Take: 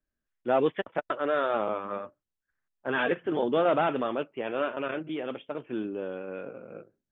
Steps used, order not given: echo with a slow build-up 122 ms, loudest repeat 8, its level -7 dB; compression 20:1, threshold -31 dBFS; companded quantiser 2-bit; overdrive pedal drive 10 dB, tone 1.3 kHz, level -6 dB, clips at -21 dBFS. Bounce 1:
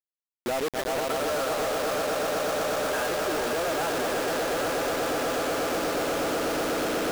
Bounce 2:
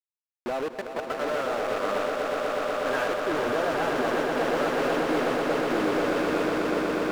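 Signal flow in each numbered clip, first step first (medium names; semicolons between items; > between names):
echo with a slow build-up > compression > overdrive pedal > companded quantiser; compression > companded quantiser > overdrive pedal > echo with a slow build-up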